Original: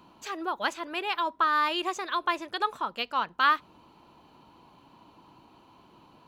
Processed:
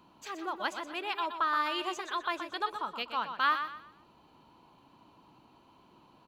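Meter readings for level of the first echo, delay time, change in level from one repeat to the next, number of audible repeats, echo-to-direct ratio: -8.5 dB, 0.123 s, -10.0 dB, 3, -8.0 dB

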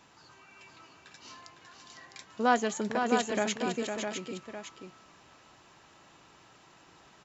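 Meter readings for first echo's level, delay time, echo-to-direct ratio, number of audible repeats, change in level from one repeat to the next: -6.5 dB, 0.506 s, -2.5 dB, 3, no steady repeat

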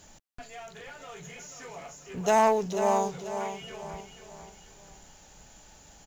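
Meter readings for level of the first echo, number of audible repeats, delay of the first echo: -9.0 dB, 4, 0.488 s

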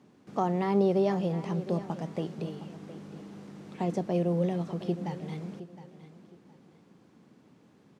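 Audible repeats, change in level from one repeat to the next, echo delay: 2, -11.5 dB, 0.714 s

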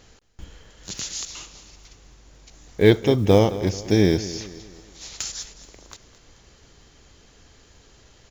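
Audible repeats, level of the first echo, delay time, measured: 3, -15.5 dB, 0.216 s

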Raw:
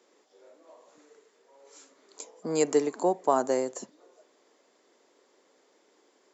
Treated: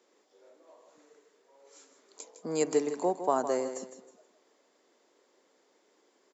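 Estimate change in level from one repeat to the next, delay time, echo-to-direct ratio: -10.0 dB, 0.158 s, -10.0 dB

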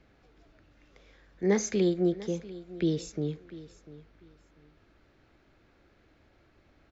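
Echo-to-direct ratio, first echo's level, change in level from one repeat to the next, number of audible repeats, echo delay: -17.5 dB, -17.5 dB, -13.5 dB, 2, 0.695 s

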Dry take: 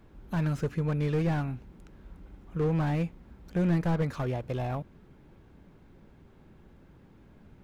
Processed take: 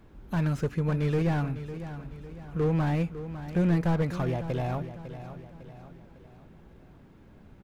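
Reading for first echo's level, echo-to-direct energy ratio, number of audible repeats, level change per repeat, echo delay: -12.0 dB, -11.0 dB, 4, -7.0 dB, 0.553 s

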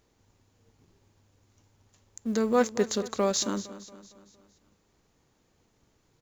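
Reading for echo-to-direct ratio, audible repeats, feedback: -14.5 dB, 4, 50%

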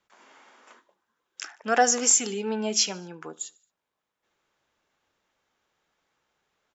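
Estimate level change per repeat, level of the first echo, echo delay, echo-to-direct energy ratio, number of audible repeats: -6.0 dB, -23.5 dB, 74 ms, -22.5 dB, 2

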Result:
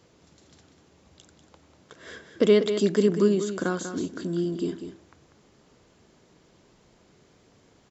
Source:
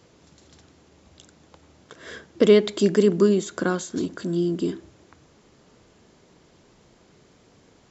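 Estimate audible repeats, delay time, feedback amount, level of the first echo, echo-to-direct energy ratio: 1, 0.193 s, no steady repeat, -9.5 dB, -9.5 dB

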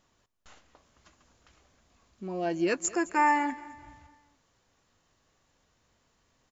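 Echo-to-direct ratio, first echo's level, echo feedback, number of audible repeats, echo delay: -18.0 dB, -19.0 dB, 45%, 3, 0.213 s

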